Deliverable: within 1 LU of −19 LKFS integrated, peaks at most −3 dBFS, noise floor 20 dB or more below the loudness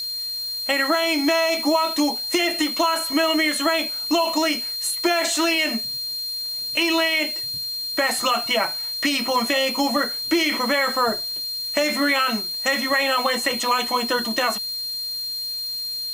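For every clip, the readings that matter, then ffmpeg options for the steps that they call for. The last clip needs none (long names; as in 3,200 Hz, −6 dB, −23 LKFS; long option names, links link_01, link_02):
interfering tone 4,200 Hz; level of the tone −26 dBFS; background noise floor −29 dBFS; target noise floor −41 dBFS; integrated loudness −21.0 LKFS; sample peak −7.5 dBFS; target loudness −19.0 LKFS
→ -af "bandreject=frequency=4200:width=30"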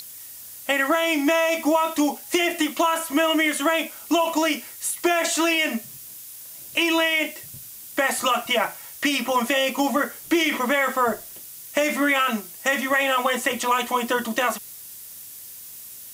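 interfering tone none found; background noise floor −41 dBFS; target noise floor −42 dBFS
→ -af "afftdn=noise_reduction=6:noise_floor=-41"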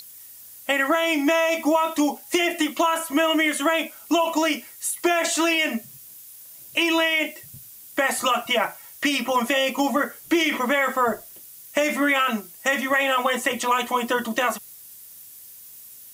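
background noise floor −45 dBFS; integrated loudness −22.0 LKFS; sample peak −8.5 dBFS; target loudness −19.0 LKFS
→ -af "volume=3dB"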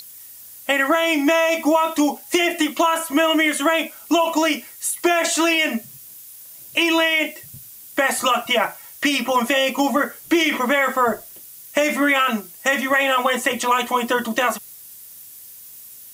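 integrated loudness −19.0 LKFS; sample peak −5.5 dBFS; background noise floor −42 dBFS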